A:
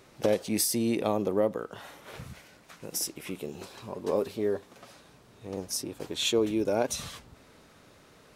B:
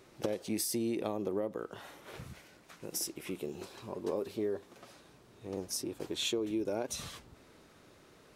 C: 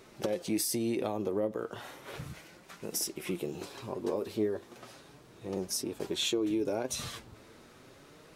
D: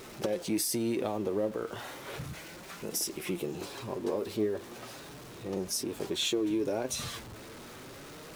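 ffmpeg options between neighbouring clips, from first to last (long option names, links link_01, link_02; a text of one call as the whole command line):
ffmpeg -i in.wav -af "equalizer=frequency=350:width_type=o:width=0.38:gain=5.5,acompressor=threshold=-26dB:ratio=6,volume=-4dB" out.wav
ffmpeg -i in.wav -filter_complex "[0:a]flanger=delay=4.4:depth=5:regen=55:speed=0.34:shape=triangular,asplit=2[link_01][link_02];[link_02]alimiter=level_in=8dB:limit=-24dB:level=0:latency=1:release=211,volume=-8dB,volume=0dB[link_03];[link_01][link_03]amix=inputs=2:normalize=0,volume=2.5dB" out.wav
ffmpeg -i in.wav -af "aeval=exprs='val(0)+0.5*0.00596*sgn(val(0))':channel_layout=same" out.wav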